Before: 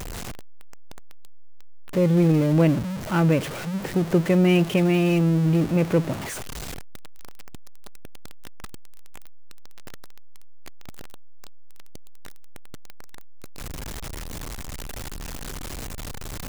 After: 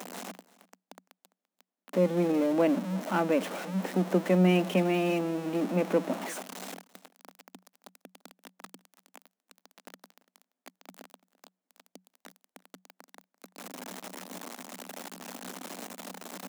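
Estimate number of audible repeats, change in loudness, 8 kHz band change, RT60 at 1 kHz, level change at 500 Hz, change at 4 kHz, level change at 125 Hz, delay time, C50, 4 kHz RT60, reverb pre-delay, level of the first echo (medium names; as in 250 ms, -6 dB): 1, -6.5 dB, -6.0 dB, no reverb, -3.5 dB, -6.0 dB, -12.0 dB, 340 ms, no reverb, no reverb, no reverb, -21.5 dB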